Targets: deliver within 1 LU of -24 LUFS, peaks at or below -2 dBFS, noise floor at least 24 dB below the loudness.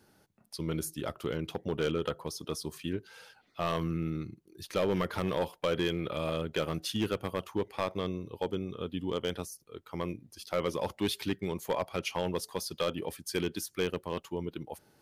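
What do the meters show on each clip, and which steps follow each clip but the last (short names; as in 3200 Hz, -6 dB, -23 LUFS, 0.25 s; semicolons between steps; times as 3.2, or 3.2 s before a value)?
clipped 0.8%; flat tops at -22.5 dBFS; loudness -34.5 LUFS; peak -22.5 dBFS; loudness target -24.0 LUFS
-> clip repair -22.5 dBFS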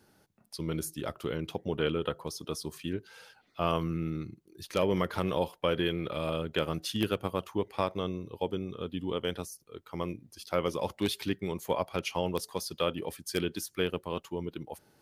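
clipped 0.0%; loudness -33.5 LUFS; peak -13.5 dBFS; loudness target -24.0 LUFS
-> gain +9.5 dB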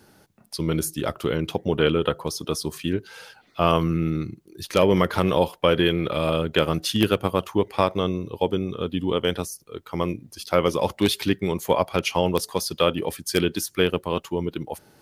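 loudness -24.0 LUFS; peak -4.0 dBFS; noise floor -57 dBFS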